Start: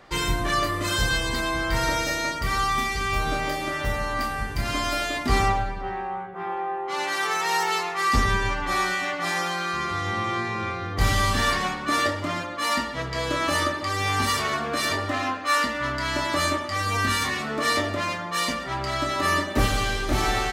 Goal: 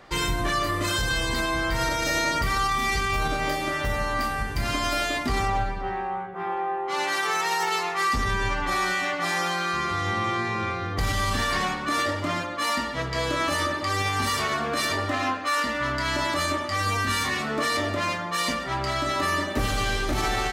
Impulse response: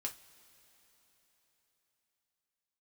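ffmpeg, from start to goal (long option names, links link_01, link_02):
-filter_complex "[0:a]asettb=1/sr,asplit=3[link_01][link_02][link_03];[link_01]atrim=end=2.024[link_04];[link_02]atrim=start=2.02:end=3.28,asetpts=PTS-STARTPTS,afade=type=in:duration=0.004:curve=qsin,afade=type=out:start_time=1.256:duration=0.004:curve=qsin,acontrast=33[link_05];[link_03]atrim=start=3.276[link_06];[link_04][link_05]acrossfade=duration=0.004:curve1=hsin:curve2=qsin[link_07];[link_07][link_06]acrossfade=duration=0.004:curve1=qsin:curve2=hsin,alimiter=limit=-17dB:level=0:latency=1:release=52,volume=1dB"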